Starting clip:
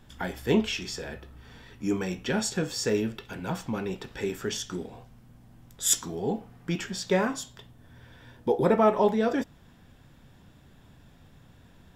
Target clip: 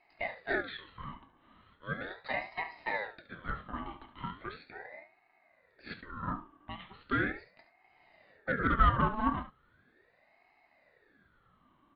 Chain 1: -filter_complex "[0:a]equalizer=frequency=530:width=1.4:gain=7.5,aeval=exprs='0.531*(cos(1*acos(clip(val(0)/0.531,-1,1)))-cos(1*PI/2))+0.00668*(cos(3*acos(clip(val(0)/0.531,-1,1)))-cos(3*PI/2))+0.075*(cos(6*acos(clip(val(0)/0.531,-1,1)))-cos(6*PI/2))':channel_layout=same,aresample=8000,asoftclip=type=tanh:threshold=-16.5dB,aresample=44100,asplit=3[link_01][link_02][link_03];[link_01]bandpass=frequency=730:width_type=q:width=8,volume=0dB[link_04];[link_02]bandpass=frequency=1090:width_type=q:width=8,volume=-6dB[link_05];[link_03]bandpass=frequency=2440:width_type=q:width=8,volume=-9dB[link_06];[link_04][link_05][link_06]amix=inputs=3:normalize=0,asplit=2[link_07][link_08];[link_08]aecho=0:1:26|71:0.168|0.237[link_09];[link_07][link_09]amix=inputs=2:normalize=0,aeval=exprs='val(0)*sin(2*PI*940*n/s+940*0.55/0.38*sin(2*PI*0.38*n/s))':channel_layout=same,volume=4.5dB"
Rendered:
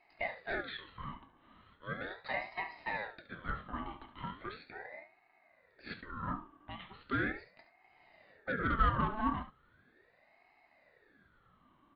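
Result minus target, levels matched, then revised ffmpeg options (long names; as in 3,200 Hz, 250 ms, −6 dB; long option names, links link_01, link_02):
soft clipping: distortion +12 dB
-filter_complex "[0:a]equalizer=frequency=530:width=1.4:gain=7.5,aeval=exprs='0.531*(cos(1*acos(clip(val(0)/0.531,-1,1)))-cos(1*PI/2))+0.00668*(cos(3*acos(clip(val(0)/0.531,-1,1)))-cos(3*PI/2))+0.075*(cos(6*acos(clip(val(0)/0.531,-1,1)))-cos(6*PI/2))':channel_layout=same,aresample=8000,asoftclip=type=tanh:threshold=-7dB,aresample=44100,asplit=3[link_01][link_02][link_03];[link_01]bandpass=frequency=730:width_type=q:width=8,volume=0dB[link_04];[link_02]bandpass=frequency=1090:width_type=q:width=8,volume=-6dB[link_05];[link_03]bandpass=frequency=2440:width_type=q:width=8,volume=-9dB[link_06];[link_04][link_05][link_06]amix=inputs=3:normalize=0,asplit=2[link_07][link_08];[link_08]aecho=0:1:26|71:0.168|0.237[link_09];[link_07][link_09]amix=inputs=2:normalize=0,aeval=exprs='val(0)*sin(2*PI*940*n/s+940*0.55/0.38*sin(2*PI*0.38*n/s))':channel_layout=same,volume=4.5dB"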